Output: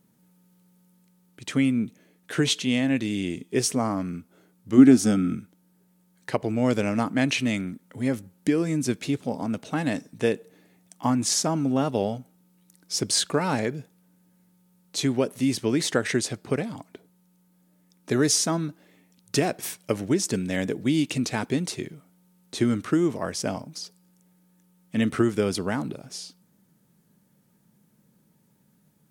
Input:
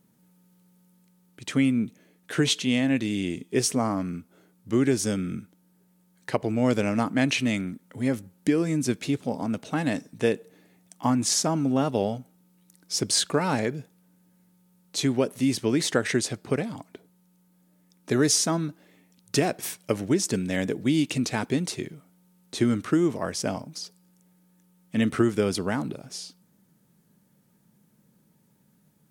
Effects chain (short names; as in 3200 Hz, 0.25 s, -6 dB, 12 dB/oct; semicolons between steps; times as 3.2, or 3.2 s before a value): 4.77–5.33 small resonant body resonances 250/720/1300 Hz, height 14 dB -> 11 dB